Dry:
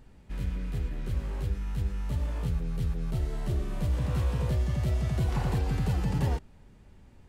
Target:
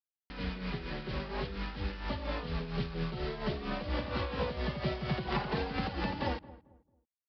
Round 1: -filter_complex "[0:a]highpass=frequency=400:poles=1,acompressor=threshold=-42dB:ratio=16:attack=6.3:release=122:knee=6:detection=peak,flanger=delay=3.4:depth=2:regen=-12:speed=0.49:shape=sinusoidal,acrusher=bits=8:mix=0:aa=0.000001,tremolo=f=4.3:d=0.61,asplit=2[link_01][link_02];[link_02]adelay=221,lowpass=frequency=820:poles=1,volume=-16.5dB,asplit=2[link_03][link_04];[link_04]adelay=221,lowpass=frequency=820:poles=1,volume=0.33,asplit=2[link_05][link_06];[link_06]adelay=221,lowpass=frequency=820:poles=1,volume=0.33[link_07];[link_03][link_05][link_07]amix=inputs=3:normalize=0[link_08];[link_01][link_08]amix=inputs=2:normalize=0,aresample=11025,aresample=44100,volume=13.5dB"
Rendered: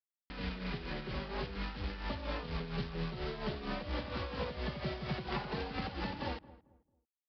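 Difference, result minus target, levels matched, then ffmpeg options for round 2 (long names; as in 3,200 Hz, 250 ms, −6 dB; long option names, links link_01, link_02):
downward compressor: peak gain reduction +5.5 dB
-filter_complex "[0:a]highpass=frequency=400:poles=1,acompressor=threshold=-36dB:ratio=16:attack=6.3:release=122:knee=6:detection=peak,flanger=delay=3.4:depth=2:regen=-12:speed=0.49:shape=sinusoidal,acrusher=bits=8:mix=0:aa=0.000001,tremolo=f=4.3:d=0.61,asplit=2[link_01][link_02];[link_02]adelay=221,lowpass=frequency=820:poles=1,volume=-16.5dB,asplit=2[link_03][link_04];[link_04]adelay=221,lowpass=frequency=820:poles=1,volume=0.33,asplit=2[link_05][link_06];[link_06]adelay=221,lowpass=frequency=820:poles=1,volume=0.33[link_07];[link_03][link_05][link_07]amix=inputs=3:normalize=0[link_08];[link_01][link_08]amix=inputs=2:normalize=0,aresample=11025,aresample=44100,volume=13.5dB"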